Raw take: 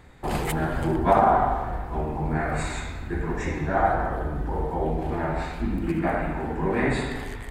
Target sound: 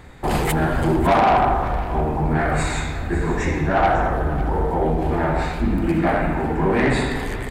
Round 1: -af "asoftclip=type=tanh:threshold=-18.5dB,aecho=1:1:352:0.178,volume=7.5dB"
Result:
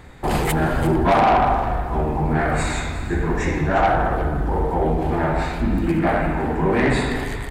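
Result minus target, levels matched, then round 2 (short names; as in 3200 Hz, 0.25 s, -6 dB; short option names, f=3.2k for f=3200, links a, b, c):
echo 0.198 s early
-af "asoftclip=type=tanh:threshold=-18.5dB,aecho=1:1:550:0.178,volume=7.5dB"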